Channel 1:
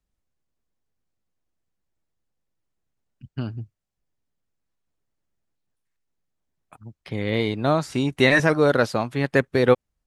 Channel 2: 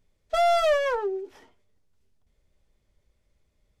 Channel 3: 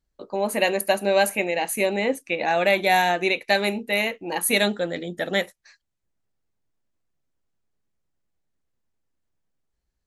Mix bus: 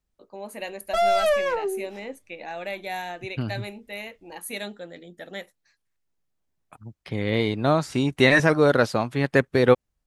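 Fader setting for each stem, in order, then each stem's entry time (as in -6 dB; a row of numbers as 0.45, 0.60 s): 0.0, +0.5, -13.0 dB; 0.00, 0.60, 0.00 s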